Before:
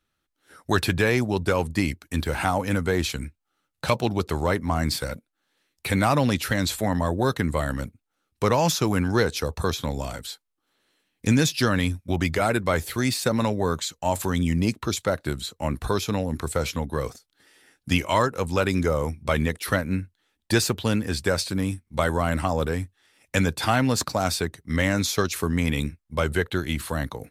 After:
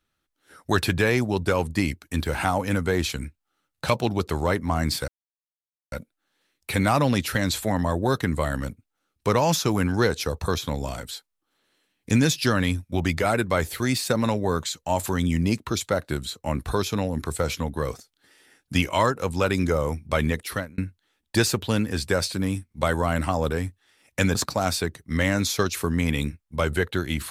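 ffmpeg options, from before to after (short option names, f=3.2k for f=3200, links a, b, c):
-filter_complex "[0:a]asplit=4[a][b][c][d];[a]atrim=end=5.08,asetpts=PTS-STARTPTS,afade=t=out:st=5.076:d=0.004:c=hsin,apad=pad_dur=0.84[e];[b]atrim=start=5.08:end=19.94,asetpts=PTS-STARTPTS,afade=t=in:d=0.004:c=hsin,afade=t=out:st=14.49:d=0.37[f];[c]atrim=start=19.94:end=23.512,asetpts=PTS-STARTPTS,afade=t=in:d=0.004:c=hsin[g];[d]atrim=start=23.938[h];[e][f][g]concat=n=3:v=0:a=1[i];[i][h]acrossfade=d=0.004:c1=hsin:c2=hsin"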